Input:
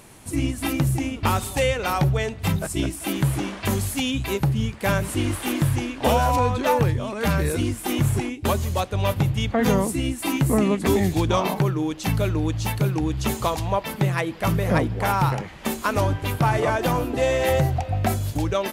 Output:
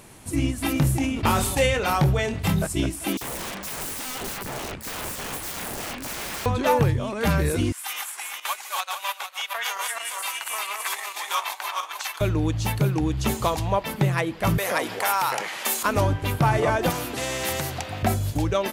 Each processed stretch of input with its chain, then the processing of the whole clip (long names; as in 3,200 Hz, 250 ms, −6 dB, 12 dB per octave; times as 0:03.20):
0:00.73–0:02.65: double-tracking delay 26 ms −8 dB + level that may fall only so fast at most 44 dB per second
0:03.17–0:06.46: downward compressor 5 to 1, threshold −22 dBFS + wrap-around overflow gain 27 dB + multiband delay without the direct sound highs, lows 40 ms, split 4,100 Hz
0:07.72–0:12.21: feedback delay that plays each chunk backwards 227 ms, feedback 52%, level −2 dB + high-pass filter 960 Hz 24 dB per octave + transient designer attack 0 dB, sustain −7 dB
0:14.58–0:15.83: Bessel high-pass filter 780 Hz + high-shelf EQ 5,200 Hz +8 dB + envelope flattener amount 50%
0:16.90–0:18.03: high-pass filter 78 Hz 24 dB per octave + every bin compressed towards the loudest bin 2 to 1
whole clip: no processing